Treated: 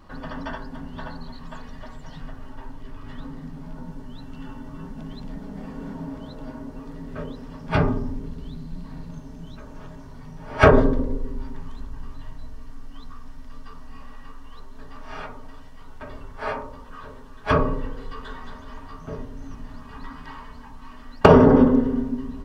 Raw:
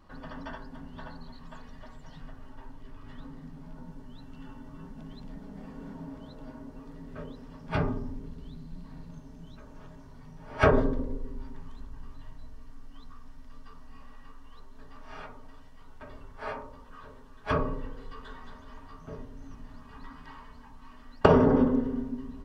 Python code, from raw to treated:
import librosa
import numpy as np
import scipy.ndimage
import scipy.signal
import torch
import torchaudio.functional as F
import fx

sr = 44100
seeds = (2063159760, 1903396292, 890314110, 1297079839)

y = np.clip(x, -10.0 ** (-9.0 / 20.0), 10.0 ** (-9.0 / 20.0))
y = y * 10.0 ** (8.0 / 20.0)